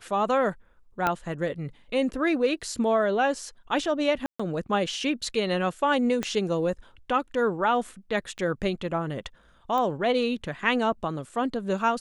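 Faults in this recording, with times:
0:01.07: click −11 dBFS
0:04.26–0:04.39: drop-out 135 ms
0:06.23: click −14 dBFS
0:08.38–0:08.39: drop-out 8.7 ms
0:09.78: click −17 dBFS

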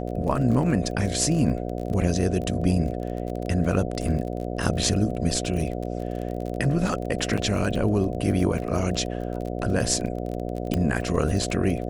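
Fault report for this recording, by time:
mains buzz 60 Hz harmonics 12 −30 dBFS
surface crackle 26 per second −30 dBFS
0:07.37–0:07.38: drop-out 6.2 ms
0:10.74: click −11 dBFS

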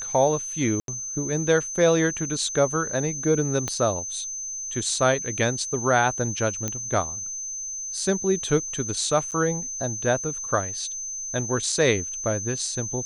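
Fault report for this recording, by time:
whistle 6,200 Hz −30 dBFS
0:00.80–0:00.88: drop-out 82 ms
0:03.68: click −13 dBFS
0:06.68: click −12 dBFS
0:09.31–0:09.32: drop-out 7.7 ms

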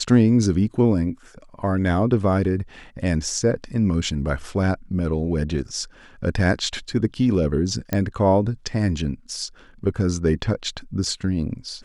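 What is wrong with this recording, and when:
0:07.93: click −9 dBFS

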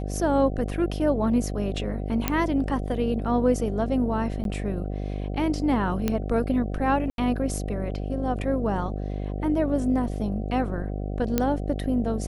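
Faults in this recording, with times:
mains buzz 50 Hz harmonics 15 −30 dBFS
0:02.28: click −7 dBFS
0:04.44–0:04.45: drop-out 12 ms
0:06.08: click −11 dBFS
0:07.10–0:07.18: drop-out 82 ms
0:11.38: click −8 dBFS

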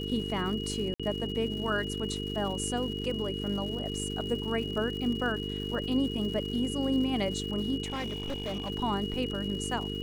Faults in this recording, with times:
mains buzz 50 Hz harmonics 9 −36 dBFS
surface crackle 230 per second −39 dBFS
whistle 2,900 Hz −38 dBFS
0:00.94–0:01.00: drop-out 56 ms
0:07.84–0:08.70: clipping −30 dBFS

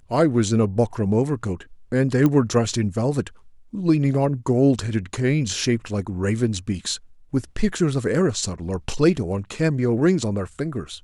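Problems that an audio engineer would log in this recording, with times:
0:02.26: click −9 dBFS

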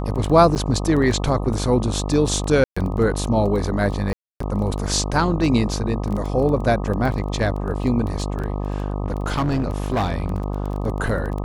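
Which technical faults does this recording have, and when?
mains buzz 50 Hz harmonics 25 −25 dBFS
surface crackle 11 per second −26 dBFS
0:00.55–0:00.56: drop-out 8.4 ms
0:02.64–0:02.77: drop-out 125 ms
0:04.13–0:04.40: drop-out 274 ms
0:08.26–0:10.80: clipping −17 dBFS

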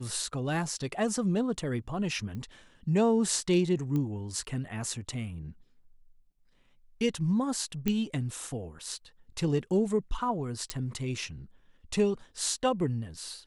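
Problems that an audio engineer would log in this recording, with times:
0:02.35: click −29 dBFS
0:03.96: click −21 dBFS
0:07.88: click −14 dBFS
0:10.70: click −15 dBFS

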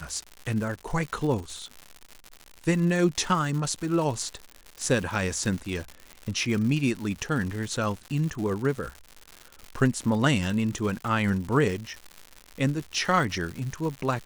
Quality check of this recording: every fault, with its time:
surface crackle 170 per second −32 dBFS

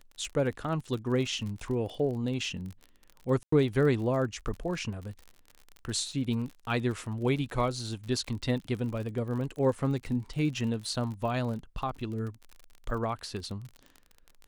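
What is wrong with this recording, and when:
surface crackle 45 per second −37 dBFS
0:03.43–0:03.52: drop-out 94 ms

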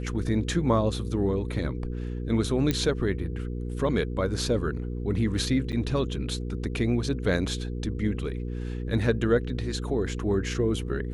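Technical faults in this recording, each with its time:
mains hum 60 Hz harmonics 8 −32 dBFS
0:02.71: click −11 dBFS
0:05.72–0:05.73: drop-out 7.9 ms

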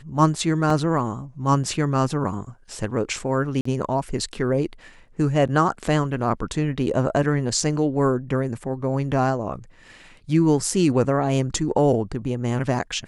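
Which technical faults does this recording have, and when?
0:00.70: drop-out 3.6 ms
0:03.61–0:03.65: drop-out 44 ms

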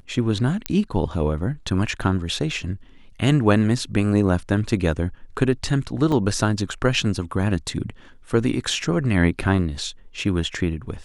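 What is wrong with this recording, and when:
0:00.66: click −6 dBFS
0:06.12: drop-out 3.4 ms

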